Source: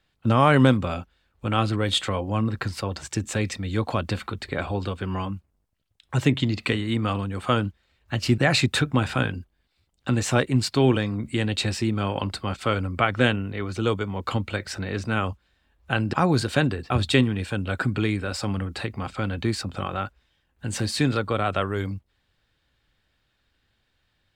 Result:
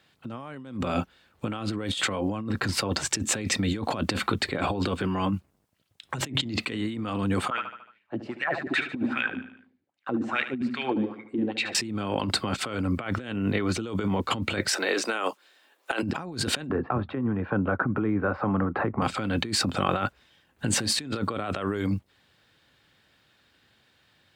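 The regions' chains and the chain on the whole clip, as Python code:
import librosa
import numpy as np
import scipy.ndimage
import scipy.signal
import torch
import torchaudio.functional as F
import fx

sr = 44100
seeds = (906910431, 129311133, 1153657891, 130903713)

y = fx.chain(x, sr, fx.wah_lfo(hz=2.5, low_hz=240.0, high_hz=2400.0, q=4.7),
    fx.echo_feedback(ms=74, feedback_pct=51, wet_db=-12), at=(7.5, 11.75))
y = fx.chain(y, sr, fx.highpass(hz=340.0, slope=24),
    fx.high_shelf(hz=5100.0, db=6.0), at=(14.68, 16.03))
y = fx.chain(y, sr, fx.ladder_lowpass(hz=1500.0, resonance_pct=35),
    fx.band_squash(depth_pct=100), at=(16.69, 19.02))
y = scipy.signal.sosfilt(scipy.signal.butter(2, 130.0, 'highpass', fs=sr, output='sos'), y)
y = fx.dynamic_eq(y, sr, hz=270.0, q=1.6, threshold_db=-36.0, ratio=4.0, max_db=4)
y = fx.over_compress(y, sr, threshold_db=-32.0, ratio=-1.0)
y = y * 10.0 ** (3.0 / 20.0)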